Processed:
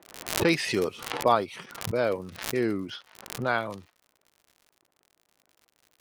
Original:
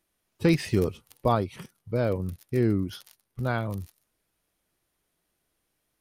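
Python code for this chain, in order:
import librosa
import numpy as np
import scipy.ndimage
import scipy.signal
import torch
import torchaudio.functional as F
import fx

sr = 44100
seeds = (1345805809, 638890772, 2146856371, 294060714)

y = fx.weighting(x, sr, curve='A')
y = fx.env_lowpass(y, sr, base_hz=780.0, full_db=-29.5)
y = fx.dmg_crackle(y, sr, seeds[0], per_s=85.0, level_db=-50.0)
y = fx.pre_swell(y, sr, db_per_s=83.0)
y = F.gain(torch.from_numpy(y), 4.0).numpy()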